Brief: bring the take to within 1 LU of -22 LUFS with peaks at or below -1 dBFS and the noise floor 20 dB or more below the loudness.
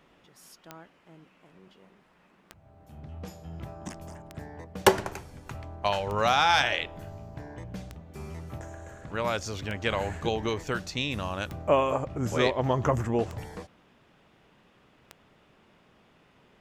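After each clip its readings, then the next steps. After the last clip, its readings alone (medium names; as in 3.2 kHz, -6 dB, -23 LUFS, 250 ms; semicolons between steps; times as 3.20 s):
clicks found 9; loudness -28.0 LUFS; peak level -5.0 dBFS; loudness target -22.0 LUFS
-> de-click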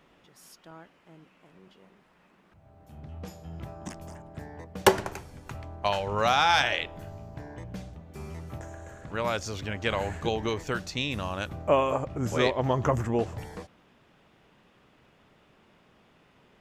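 clicks found 0; loudness -28.0 LUFS; peak level -5.0 dBFS; loudness target -22.0 LUFS
-> trim +6 dB; peak limiter -1 dBFS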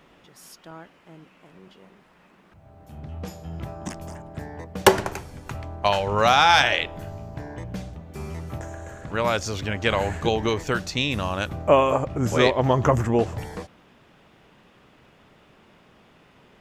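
loudness -22.5 LUFS; peak level -1.0 dBFS; noise floor -56 dBFS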